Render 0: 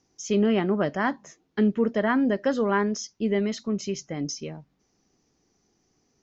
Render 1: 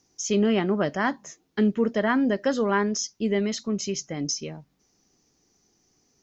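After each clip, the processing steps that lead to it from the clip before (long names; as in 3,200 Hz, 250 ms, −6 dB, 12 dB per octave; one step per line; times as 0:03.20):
high-shelf EQ 4,900 Hz +10 dB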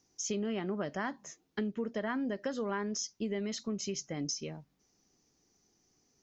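downward compressor 6 to 1, threshold −26 dBFS, peak gain reduction 9 dB
level −5.5 dB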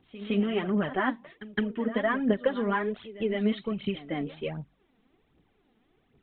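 phase shifter 1.3 Hz, delay 4.7 ms, feedback 64%
downsampling to 8,000 Hz
echo ahead of the sound 163 ms −15 dB
level +6 dB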